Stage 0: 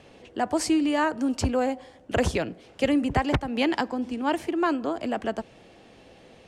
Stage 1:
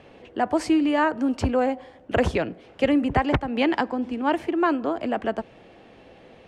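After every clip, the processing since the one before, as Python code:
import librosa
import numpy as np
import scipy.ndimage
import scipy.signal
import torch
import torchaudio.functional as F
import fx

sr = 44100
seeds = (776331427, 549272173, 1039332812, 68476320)

y = fx.bass_treble(x, sr, bass_db=-2, treble_db=-12)
y = y * 10.0 ** (3.0 / 20.0)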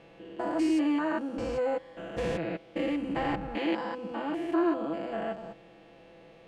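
y = fx.spec_steps(x, sr, hold_ms=200)
y = y + 0.8 * np.pad(y, (int(6.0 * sr / 1000.0), 0))[:len(y)]
y = y * 10.0 ** (-5.5 / 20.0)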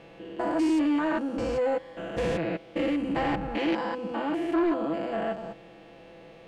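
y = 10.0 ** (-23.5 / 20.0) * np.tanh(x / 10.0 ** (-23.5 / 20.0))
y = y * 10.0 ** (4.5 / 20.0)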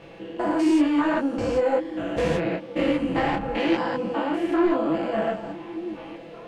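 y = fx.echo_stepped(x, sr, ms=601, hz=150.0, octaves=1.4, feedback_pct=70, wet_db=-10)
y = fx.detune_double(y, sr, cents=35)
y = y * 10.0 ** (8.0 / 20.0)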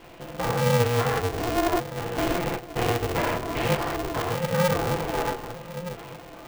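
y = x * np.sign(np.sin(2.0 * np.pi * 180.0 * np.arange(len(x)) / sr))
y = y * 10.0 ** (-2.0 / 20.0)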